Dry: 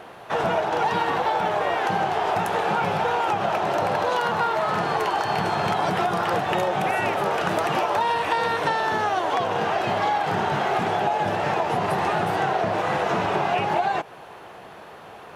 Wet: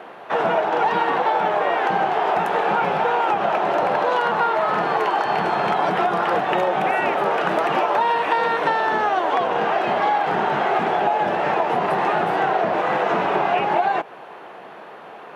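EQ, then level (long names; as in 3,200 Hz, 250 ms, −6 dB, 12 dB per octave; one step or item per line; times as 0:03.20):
three-way crossover with the lows and the highs turned down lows −24 dB, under 170 Hz, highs −12 dB, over 3,300 Hz
+3.5 dB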